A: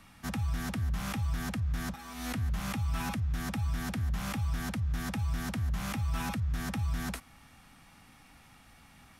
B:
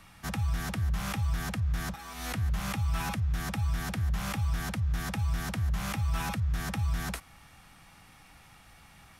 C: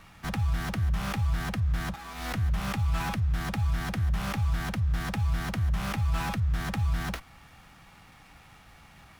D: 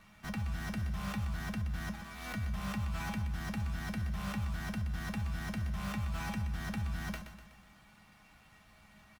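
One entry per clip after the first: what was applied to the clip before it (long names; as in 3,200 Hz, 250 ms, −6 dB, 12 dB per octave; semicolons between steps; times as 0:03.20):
parametric band 250 Hz −9 dB 0.39 octaves; level +2.5 dB
windowed peak hold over 5 samples; level +2.5 dB
tuned comb filter 210 Hz, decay 0.17 s, harmonics odd, mix 80%; on a send: repeating echo 124 ms, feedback 51%, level −10 dB; on the sum: level +2.5 dB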